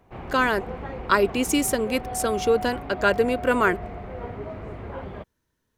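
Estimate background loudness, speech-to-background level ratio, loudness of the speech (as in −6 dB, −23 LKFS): −35.0 LKFS, 11.5 dB, −23.5 LKFS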